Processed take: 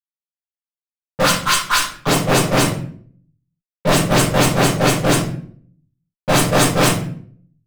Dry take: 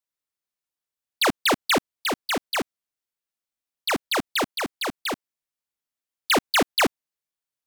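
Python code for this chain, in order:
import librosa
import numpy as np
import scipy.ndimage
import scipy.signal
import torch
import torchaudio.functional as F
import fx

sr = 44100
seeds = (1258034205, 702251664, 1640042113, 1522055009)

y = fx.octave_mirror(x, sr, pivot_hz=1500.0)
y = fx.cheby_ripple_highpass(y, sr, hz=1000.0, ripple_db=6, at=(1.22, 2.06), fade=0.02)
y = fx.fuzz(y, sr, gain_db=37.0, gate_db=-42.0)
y = fx.room_shoebox(y, sr, seeds[0], volume_m3=63.0, walls='mixed', distance_m=1.2)
y = F.gain(torch.from_numpy(y), -4.0).numpy()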